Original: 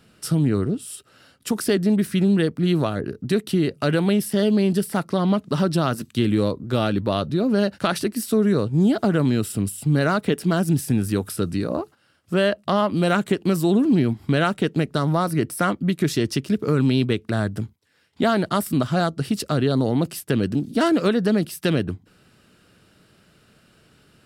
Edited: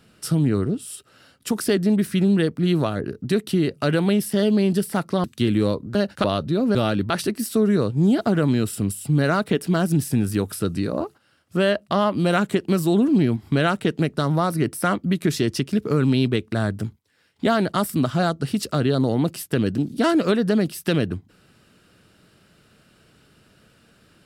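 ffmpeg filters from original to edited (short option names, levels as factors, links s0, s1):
-filter_complex "[0:a]asplit=6[s0][s1][s2][s3][s4][s5];[s0]atrim=end=5.242[s6];[s1]atrim=start=6.008:end=6.722[s7];[s2]atrim=start=7.578:end=7.872[s8];[s3]atrim=start=7.068:end=7.582[s9];[s4]atrim=start=6.718:end=7.072[s10];[s5]atrim=start=7.868[s11];[s6][s7]acrossfade=d=0.004:c1=hsin:c2=hsin[s12];[s12][s8]acrossfade=d=0.004:c1=hsin:c2=hsin[s13];[s13][s9]acrossfade=d=0.004:c1=hsin:c2=hsin[s14];[s14][s10]acrossfade=d=0.004:c1=hsin:c2=hsin[s15];[s15][s11]acrossfade=d=0.004:c1=hsin:c2=hsin"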